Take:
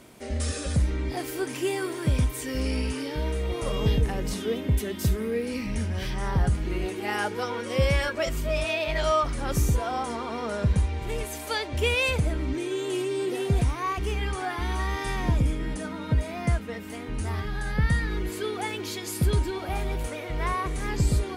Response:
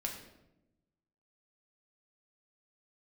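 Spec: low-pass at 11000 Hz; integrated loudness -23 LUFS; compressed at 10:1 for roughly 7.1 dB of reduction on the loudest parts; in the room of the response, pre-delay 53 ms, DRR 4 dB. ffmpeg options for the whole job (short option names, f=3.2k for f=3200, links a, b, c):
-filter_complex "[0:a]lowpass=11k,acompressor=threshold=-25dB:ratio=10,asplit=2[a][b];[1:a]atrim=start_sample=2205,adelay=53[c];[b][c]afir=irnorm=-1:irlink=0,volume=-5dB[d];[a][d]amix=inputs=2:normalize=0,volume=7dB"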